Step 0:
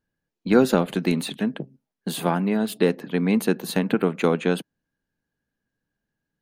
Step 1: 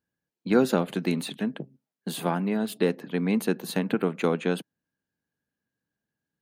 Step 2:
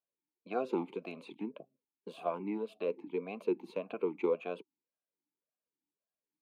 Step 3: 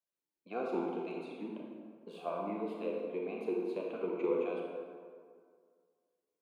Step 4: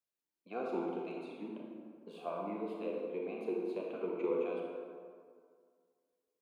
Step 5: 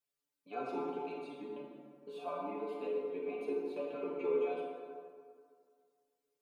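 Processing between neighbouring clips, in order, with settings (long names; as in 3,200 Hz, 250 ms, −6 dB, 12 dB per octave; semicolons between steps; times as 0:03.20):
high-pass filter 80 Hz; level −4 dB
formant filter swept between two vowels a-u 1.8 Hz; level +1.5 dB
convolution reverb RT60 2.0 s, pre-delay 23 ms, DRR −2 dB; level −4.5 dB
bucket-brigade delay 76 ms, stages 1,024, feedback 71%, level −14 dB; level −2 dB
stiff-string resonator 140 Hz, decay 0.25 s, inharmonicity 0.002; level +11.5 dB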